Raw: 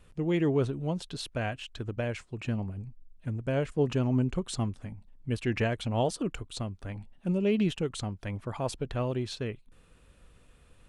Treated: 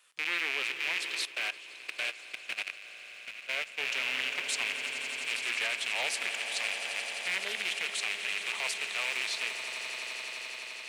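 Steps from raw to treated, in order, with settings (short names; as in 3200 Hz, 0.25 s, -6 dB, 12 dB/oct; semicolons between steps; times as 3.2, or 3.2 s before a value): rattling part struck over -36 dBFS, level -22 dBFS; HPF 1100 Hz 12 dB/oct; high shelf 2000 Hz +8.5 dB; swelling echo 86 ms, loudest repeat 8, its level -13 dB; reverb RT60 1.3 s, pre-delay 5 ms, DRR 15.5 dB; 1.25–3.85 level quantiser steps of 15 dB; Doppler distortion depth 0.2 ms; gain -2.5 dB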